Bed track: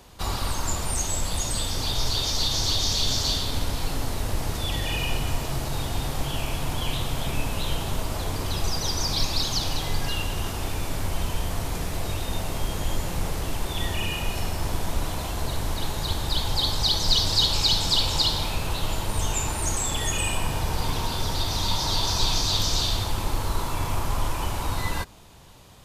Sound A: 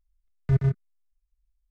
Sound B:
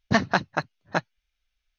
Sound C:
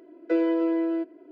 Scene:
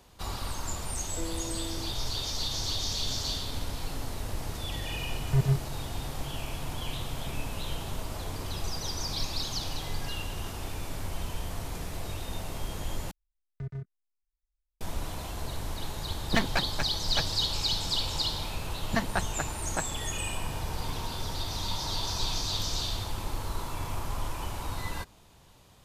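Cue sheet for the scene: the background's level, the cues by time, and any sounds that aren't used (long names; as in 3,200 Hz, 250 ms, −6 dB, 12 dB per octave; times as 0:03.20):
bed track −7.5 dB
0:00.87: mix in C −16 dB
0:04.84: mix in A −2.5 dB
0:13.11: overwrite with A −12 dB + downward compressor 4 to 1, threshold −21 dBFS
0:16.22: mix in B + half-wave rectification
0:18.82: mix in B −8 dB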